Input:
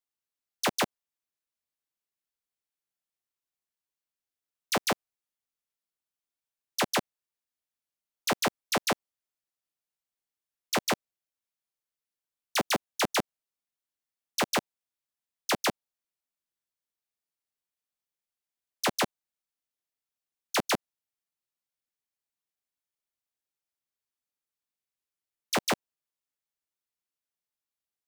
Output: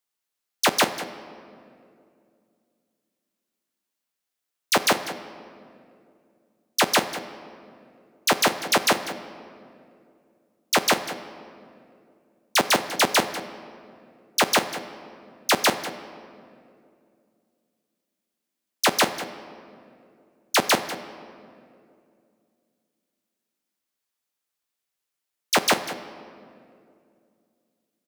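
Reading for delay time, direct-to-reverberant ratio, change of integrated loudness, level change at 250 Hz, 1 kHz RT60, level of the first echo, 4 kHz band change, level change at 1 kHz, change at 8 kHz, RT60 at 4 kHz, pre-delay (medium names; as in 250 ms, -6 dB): 195 ms, 9.0 dB, +7.0 dB, +5.0 dB, 2.1 s, -14.0 dB, +8.5 dB, +8.0 dB, +8.5 dB, 1.5 s, 7 ms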